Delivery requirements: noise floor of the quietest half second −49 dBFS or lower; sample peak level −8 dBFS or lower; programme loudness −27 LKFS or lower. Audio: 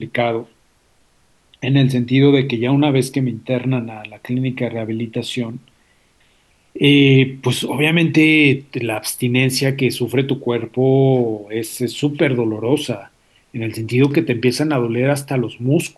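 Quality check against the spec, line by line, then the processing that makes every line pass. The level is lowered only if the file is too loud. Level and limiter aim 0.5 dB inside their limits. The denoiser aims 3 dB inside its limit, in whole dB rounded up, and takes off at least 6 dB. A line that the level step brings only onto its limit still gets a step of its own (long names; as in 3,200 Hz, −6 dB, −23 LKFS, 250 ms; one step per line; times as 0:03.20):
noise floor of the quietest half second −57 dBFS: in spec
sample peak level −3.0 dBFS: out of spec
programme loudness −17.0 LKFS: out of spec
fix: level −10.5 dB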